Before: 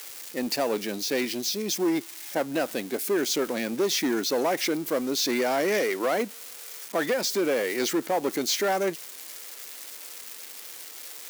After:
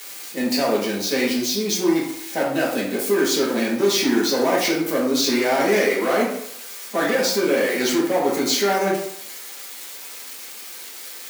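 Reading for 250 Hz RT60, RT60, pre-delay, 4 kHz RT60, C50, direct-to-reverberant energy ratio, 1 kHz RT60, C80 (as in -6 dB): 0.65 s, 0.70 s, 3 ms, 0.45 s, 3.0 dB, -5.5 dB, 0.75 s, 7.0 dB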